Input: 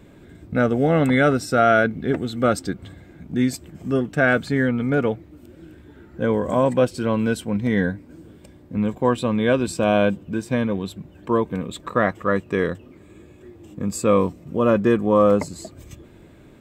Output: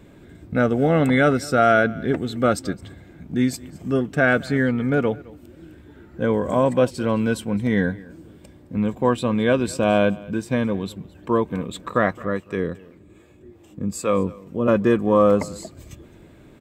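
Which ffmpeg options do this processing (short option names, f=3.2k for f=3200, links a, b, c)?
-filter_complex "[0:a]asettb=1/sr,asplit=3[a][b][c];[a]atrim=end=12.254[d];[b]atrim=start=12.25:end=14.68,asetpts=PTS-STARTPTS,afade=t=in:d=0.004:c=qsin,afade=t=out:st=2.426:d=0.004:c=qsin,acrossover=split=460[e][f];[e]aeval=exprs='val(0)*(1-0.7/2+0.7/2*cos(2*PI*2.5*n/s))':c=same[g];[f]aeval=exprs='val(0)*(1-0.7/2-0.7/2*cos(2*PI*2.5*n/s))':c=same[h];[g][h]amix=inputs=2:normalize=0[i];[c]atrim=start=14.676[j];[d][i]acrossfade=d=0.004:c1=hsin:c2=qsin[k];[k][j]acrossfade=d=0.004:c1=qsin:c2=hsin,aecho=1:1:215:0.0794"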